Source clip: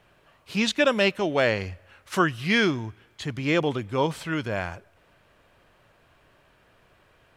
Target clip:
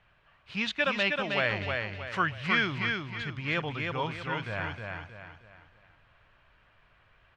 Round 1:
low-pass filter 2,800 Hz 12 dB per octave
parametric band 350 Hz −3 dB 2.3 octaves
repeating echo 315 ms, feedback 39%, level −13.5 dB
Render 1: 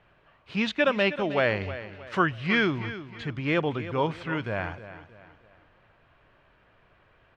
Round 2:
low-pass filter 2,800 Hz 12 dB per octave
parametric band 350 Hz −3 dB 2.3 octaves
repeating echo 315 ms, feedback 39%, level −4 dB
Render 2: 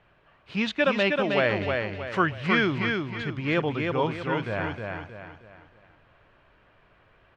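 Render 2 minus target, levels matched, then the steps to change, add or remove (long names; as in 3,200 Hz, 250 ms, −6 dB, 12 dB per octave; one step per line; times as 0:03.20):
250 Hz band +4.5 dB
change: parametric band 350 Hz −14 dB 2.3 octaves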